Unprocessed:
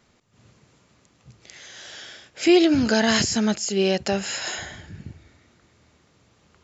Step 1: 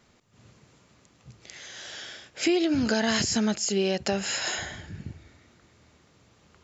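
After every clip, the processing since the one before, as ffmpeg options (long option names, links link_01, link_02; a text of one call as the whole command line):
ffmpeg -i in.wav -af "acompressor=threshold=-22dB:ratio=4" out.wav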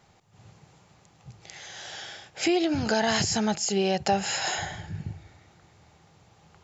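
ffmpeg -i in.wav -af "equalizer=frequency=100:width_type=o:width=0.33:gain=6,equalizer=frequency=160:width_type=o:width=0.33:gain=7,equalizer=frequency=250:width_type=o:width=0.33:gain=-8,equalizer=frequency=800:width_type=o:width=0.33:gain=11" out.wav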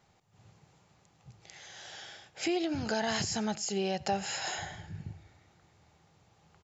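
ffmpeg -i in.wav -af "aecho=1:1:88:0.0708,volume=-7dB" out.wav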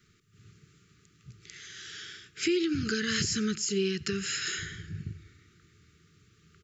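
ffmpeg -i in.wav -af "asuperstop=centerf=730:order=20:qfactor=1,volume=4dB" out.wav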